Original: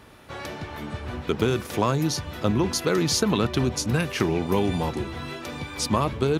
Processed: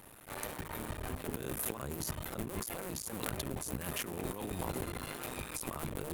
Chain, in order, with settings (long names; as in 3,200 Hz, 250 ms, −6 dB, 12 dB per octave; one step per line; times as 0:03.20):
sub-harmonics by changed cycles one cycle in 2, muted
high shelf with overshoot 7,200 Hz +12 dB, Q 1.5
mains-hum notches 50/100/150/200/250/300/350/400 Hz
compressor whose output falls as the input rises −31 dBFS, ratio −1
wrong playback speed 24 fps film run at 25 fps
level −8 dB